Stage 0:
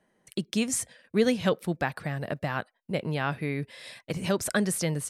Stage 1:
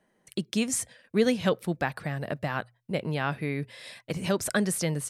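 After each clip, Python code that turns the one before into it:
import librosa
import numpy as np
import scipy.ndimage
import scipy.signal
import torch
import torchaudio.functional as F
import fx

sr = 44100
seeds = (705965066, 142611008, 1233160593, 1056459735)

y = fx.hum_notches(x, sr, base_hz=60, count=2)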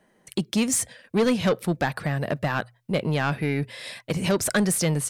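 y = 10.0 ** (-22.5 / 20.0) * np.tanh(x / 10.0 ** (-22.5 / 20.0))
y = y * 10.0 ** (7.0 / 20.0)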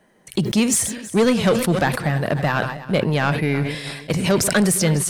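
y = fx.reverse_delay_fb(x, sr, ms=163, feedback_pct=59, wet_db=-14.0)
y = fx.sustainer(y, sr, db_per_s=68.0)
y = y * 10.0 ** (4.5 / 20.0)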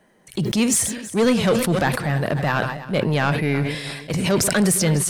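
y = fx.transient(x, sr, attack_db=-5, sustain_db=1)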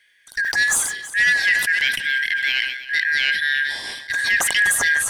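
y = fx.band_shuffle(x, sr, order='4123')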